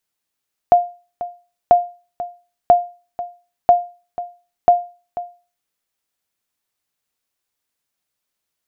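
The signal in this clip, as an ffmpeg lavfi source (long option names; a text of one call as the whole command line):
ffmpeg -f lavfi -i "aevalsrc='0.75*(sin(2*PI*704*mod(t,0.99))*exp(-6.91*mod(t,0.99)/0.34)+0.168*sin(2*PI*704*max(mod(t,0.99)-0.49,0))*exp(-6.91*max(mod(t,0.99)-0.49,0)/0.34))':duration=4.95:sample_rate=44100" out.wav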